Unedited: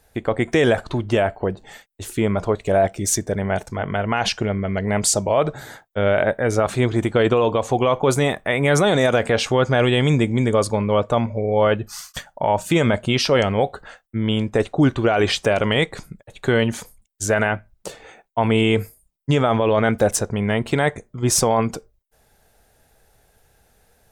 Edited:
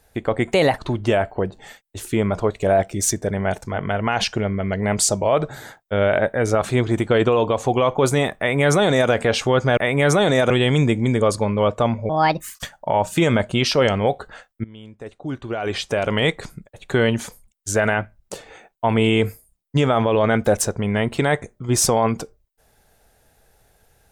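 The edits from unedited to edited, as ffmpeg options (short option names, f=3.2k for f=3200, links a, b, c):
-filter_complex "[0:a]asplit=8[a][b][c][d][e][f][g][h];[a]atrim=end=0.534[i];[b]atrim=start=0.53:end=0.83,asetpts=PTS-STARTPTS,asetrate=52479,aresample=44100[j];[c]atrim=start=0.826:end=9.822[k];[d]atrim=start=8.428:end=9.162[l];[e]atrim=start=9.818:end=11.414[m];[f]atrim=start=11.41:end=12.09,asetpts=PTS-STARTPTS,asetrate=65268,aresample=44100,atrim=end_sample=20262,asetpts=PTS-STARTPTS[n];[g]atrim=start=12.086:end=14.18,asetpts=PTS-STARTPTS,afade=t=out:st=2.09:d=0.004:c=hsin:silence=0.0891251[o];[h]atrim=start=14.18,asetpts=PTS-STARTPTS,afade=t=in:d=1.62:c=qua:silence=0.0891251[p];[i][j]acrossfade=d=0.004:c1=hsin:c2=hsin[q];[q][k]acrossfade=d=0.004:c1=hsin:c2=hsin[r];[r][l]acrossfade=d=0.004:c1=hsin:c2=hsin[s];[s][m]acrossfade=d=0.004:c1=hsin:c2=hsin[t];[t][n]acrossfade=d=0.004:c1=hsin:c2=hsin[u];[o][p]concat=n=2:v=0:a=1[v];[u][v]acrossfade=d=0.004:c1=hsin:c2=hsin"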